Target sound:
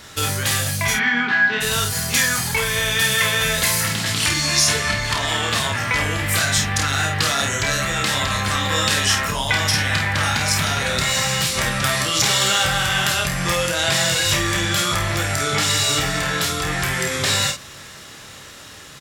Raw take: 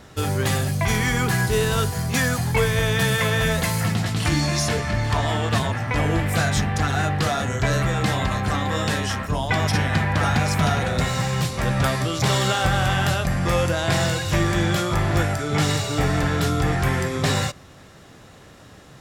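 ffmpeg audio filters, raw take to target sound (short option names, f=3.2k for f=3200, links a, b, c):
-filter_complex "[0:a]dynaudnorm=f=1000:g=9:m=11.5dB,asplit=3[a][b][c];[a]afade=t=out:st=0.93:d=0.02[d];[b]highpass=f=170:w=0.5412,highpass=f=170:w=1.3066,equalizer=f=250:t=q:w=4:g=10,equalizer=f=510:t=q:w=4:g=-6,equalizer=f=800:t=q:w=4:g=7,equalizer=f=1.6k:t=q:w=4:g=9,lowpass=f=3.5k:w=0.5412,lowpass=f=3.5k:w=1.3066,afade=t=in:st=0.93:d=0.02,afade=t=out:st=1.6:d=0.02[e];[c]afade=t=in:st=1.6:d=0.02[f];[d][e][f]amix=inputs=3:normalize=0,acompressor=threshold=-22dB:ratio=6,tiltshelf=f=1.2k:g=-7.5,bandreject=f=730:w=12,aecho=1:1:29|50:0.501|0.447,volume=4.5dB"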